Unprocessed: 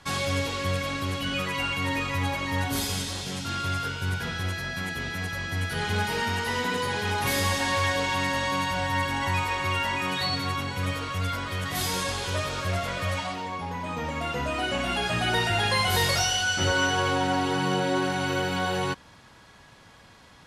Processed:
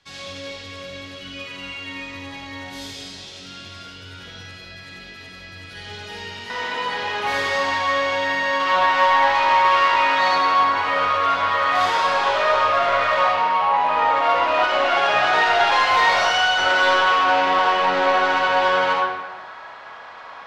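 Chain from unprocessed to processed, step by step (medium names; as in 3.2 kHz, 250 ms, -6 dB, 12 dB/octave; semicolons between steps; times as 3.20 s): peaking EQ 1 kHz -14 dB 2.6 oct, from 6.50 s +2.5 dB, from 8.60 s +14.5 dB; saturation -18.5 dBFS, distortion -9 dB; three-band isolator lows -14 dB, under 420 Hz, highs -22 dB, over 5.6 kHz; reverberation RT60 1.3 s, pre-delay 15 ms, DRR -3 dB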